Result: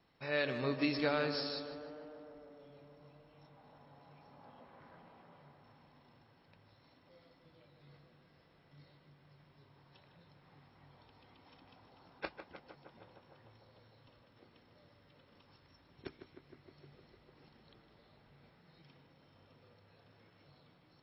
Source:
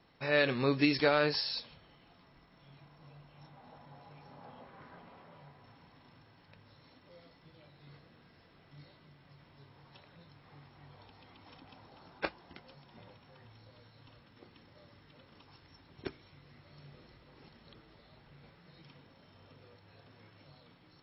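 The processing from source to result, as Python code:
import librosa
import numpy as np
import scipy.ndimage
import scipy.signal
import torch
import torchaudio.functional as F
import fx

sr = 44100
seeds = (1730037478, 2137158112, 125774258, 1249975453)

y = fx.echo_tape(x, sr, ms=153, feedback_pct=88, wet_db=-7, lp_hz=2000.0, drive_db=20.0, wow_cents=31)
y = y * librosa.db_to_amplitude(-6.5)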